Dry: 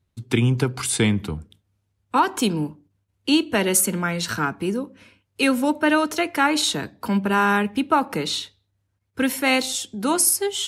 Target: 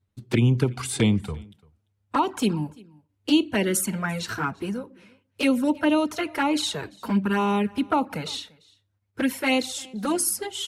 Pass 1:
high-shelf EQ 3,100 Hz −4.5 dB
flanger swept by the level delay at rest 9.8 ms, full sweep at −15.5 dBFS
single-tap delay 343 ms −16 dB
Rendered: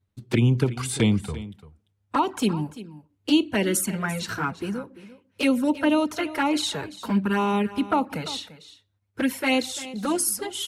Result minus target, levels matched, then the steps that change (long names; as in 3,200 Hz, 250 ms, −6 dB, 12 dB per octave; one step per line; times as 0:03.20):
echo-to-direct +9.5 dB
change: single-tap delay 343 ms −25.5 dB